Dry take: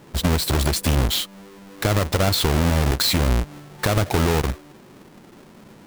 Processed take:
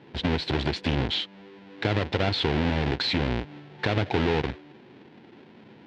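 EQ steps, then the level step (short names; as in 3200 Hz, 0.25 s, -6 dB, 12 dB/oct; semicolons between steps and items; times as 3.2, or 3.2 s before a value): speaker cabinet 120–3800 Hz, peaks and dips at 180 Hz -6 dB, 600 Hz -6 dB, 1200 Hz -10 dB; -1.5 dB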